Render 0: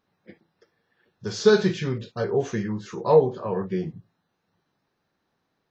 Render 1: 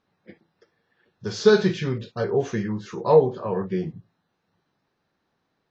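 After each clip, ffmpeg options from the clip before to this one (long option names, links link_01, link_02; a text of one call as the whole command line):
ffmpeg -i in.wav -af "lowpass=6600,volume=1dB" out.wav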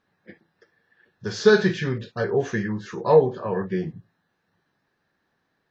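ffmpeg -i in.wav -af "equalizer=frequency=1700:width=5:gain=9" out.wav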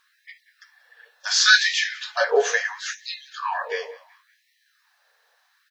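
ffmpeg -i in.wav -filter_complex "[0:a]highshelf=frequency=3400:gain=11,asplit=2[link_01][link_02];[link_02]adelay=186,lowpass=frequency=5000:poles=1,volume=-19dB,asplit=2[link_03][link_04];[link_04]adelay=186,lowpass=frequency=5000:poles=1,volume=0.5,asplit=2[link_05][link_06];[link_06]adelay=186,lowpass=frequency=5000:poles=1,volume=0.5,asplit=2[link_07][link_08];[link_08]adelay=186,lowpass=frequency=5000:poles=1,volume=0.5[link_09];[link_01][link_03][link_05][link_07][link_09]amix=inputs=5:normalize=0,afftfilt=real='re*gte(b*sr/1024,400*pow(1800/400,0.5+0.5*sin(2*PI*0.72*pts/sr)))':imag='im*gte(b*sr/1024,400*pow(1800/400,0.5+0.5*sin(2*PI*0.72*pts/sr)))':win_size=1024:overlap=0.75,volume=7.5dB" out.wav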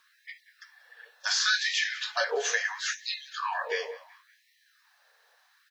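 ffmpeg -i in.wav -filter_complex "[0:a]acrossover=split=360|1900[link_01][link_02][link_03];[link_01]acompressor=threshold=-42dB:ratio=4[link_04];[link_02]acompressor=threshold=-31dB:ratio=4[link_05];[link_03]acompressor=threshold=-27dB:ratio=4[link_06];[link_04][link_05][link_06]amix=inputs=3:normalize=0" out.wav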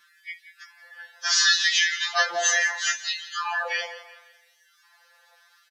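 ffmpeg -i in.wav -af "aecho=1:1:170|340|510|680:0.158|0.065|0.0266|0.0109,aresample=32000,aresample=44100,afftfilt=real='re*2.83*eq(mod(b,8),0)':imag='im*2.83*eq(mod(b,8),0)':win_size=2048:overlap=0.75,volume=8.5dB" out.wav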